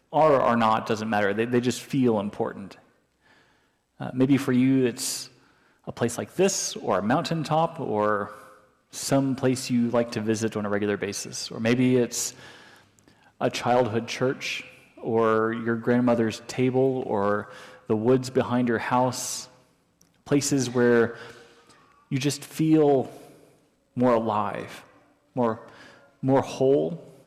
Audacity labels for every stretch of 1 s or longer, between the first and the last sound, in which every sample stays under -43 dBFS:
2.790000	4.000000	silence